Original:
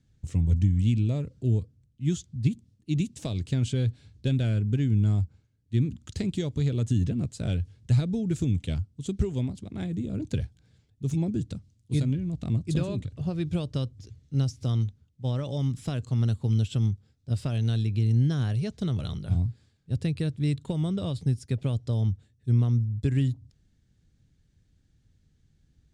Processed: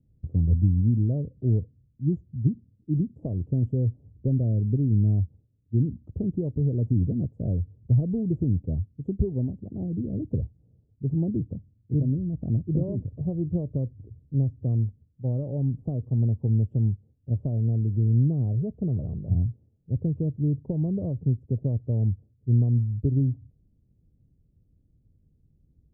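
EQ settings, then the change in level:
inverse Chebyshev low-pass filter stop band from 1,600 Hz, stop band 50 dB
+1.5 dB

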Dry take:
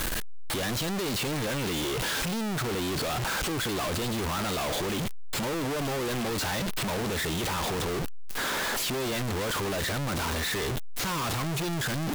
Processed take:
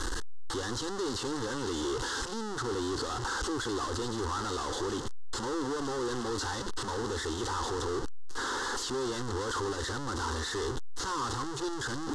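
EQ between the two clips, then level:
low-pass filter 7,500 Hz 24 dB per octave
phaser with its sweep stopped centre 640 Hz, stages 6
0.0 dB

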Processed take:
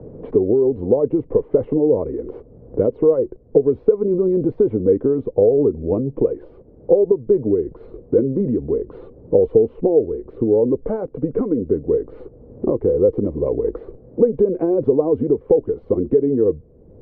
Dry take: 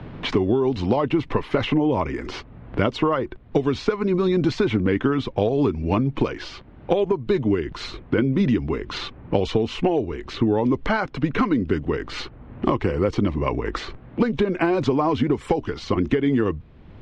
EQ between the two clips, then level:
low-pass with resonance 480 Hz, resonance Q 5.7
−3.5 dB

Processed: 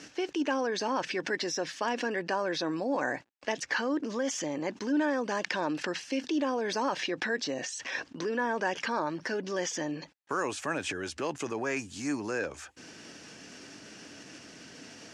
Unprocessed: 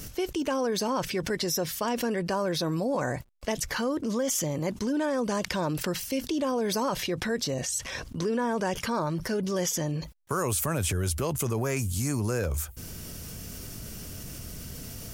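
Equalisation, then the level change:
loudspeaker in its box 290–6,500 Hz, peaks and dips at 290 Hz +8 dB, 830 Hz +5 dB, 1,700 Hz +9 dB, 2,600 Hz +5 dB
−3.5 dB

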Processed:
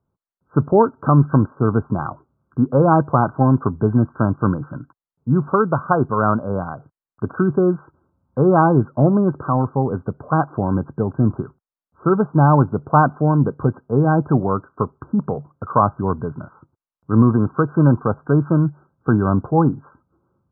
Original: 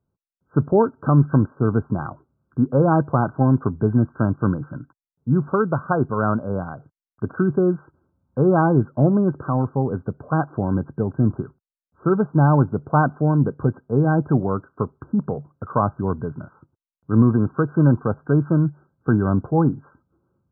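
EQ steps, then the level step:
low-pass with resonance 1,200 Hz, resonance Q 1.7
+1.5 dB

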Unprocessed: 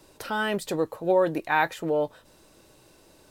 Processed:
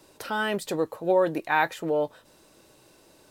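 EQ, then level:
low-shelf EQ 77 Hz −9.5 dB
0.0 dB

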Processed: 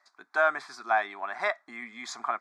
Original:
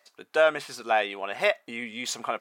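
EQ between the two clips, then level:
band-pass filter 380–4,200 Hz
phaser with its sweep stopped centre 1,200 Hz, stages 4
+3.0 dB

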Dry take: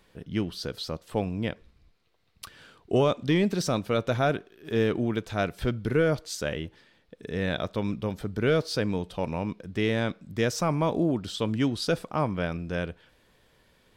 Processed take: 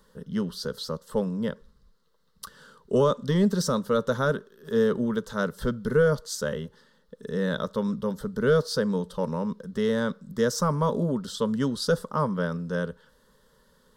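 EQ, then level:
phaser with its sweep stopped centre 480 Hz, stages 8
+4.0 dB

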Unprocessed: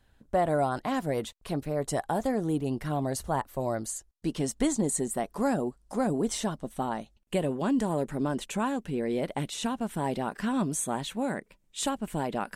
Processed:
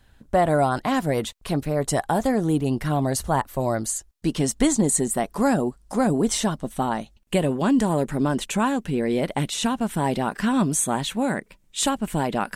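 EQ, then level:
parametric band 490 Hz −3 dB 1.8 octaves
+8.5 dB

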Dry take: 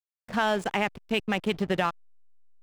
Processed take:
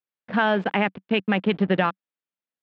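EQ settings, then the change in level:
loudspeaker in its box 140–3,500 Hz, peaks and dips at 190 Hz +6 dB, 280 Hz +5 dB, 510 Hz +3 dB, 1,600 Hz +3 dB
+3.0 dB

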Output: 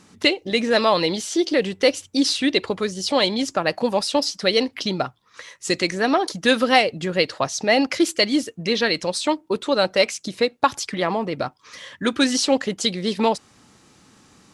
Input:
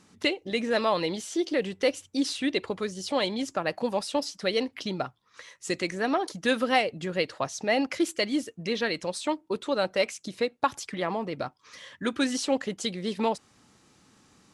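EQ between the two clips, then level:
dynamic equaliser 4,700 Hz, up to +5 dB, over −45 dBFS, Q 1.5
+7.0 dB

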